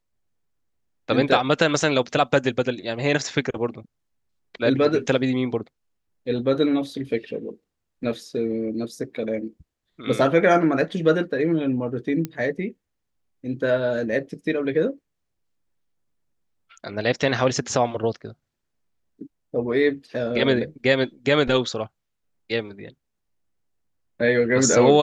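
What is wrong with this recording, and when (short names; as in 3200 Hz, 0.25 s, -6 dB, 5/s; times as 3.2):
12.25 pop -14 dBFS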